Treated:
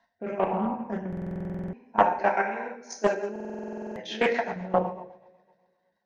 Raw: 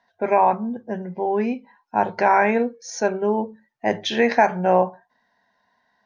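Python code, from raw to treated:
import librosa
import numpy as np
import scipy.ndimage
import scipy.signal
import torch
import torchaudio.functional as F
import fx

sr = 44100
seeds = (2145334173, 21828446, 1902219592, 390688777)

y = fx.chopper(x, sr, hz=7.6, depth_pct=60, duty_pct=35)
y = fx.level_steps(y, sr, step_db=18)
y = fx.highpass(y, sr, hz=260.0, slope=12, at=(1.99, 4.44))
y = fx.rev_double_slope(y, sr, seeds[0], early_s=0.78, late_s=2.0, knee_db=-18, drr_db=-1.0)
y = fx.rotary_switch(y, sr, hz=0.9, then_hz=8.0, switch_at_s=2.36)
y = fx.rider(y, sr, range_db=5, speed_s=2.0)
y = fx.buffer_glitch(y, sr, at_s=(1.08, 3.31), block=2048, repeats=13)
y = fx.doppler_dist(y, sr, depth_ms=0.28)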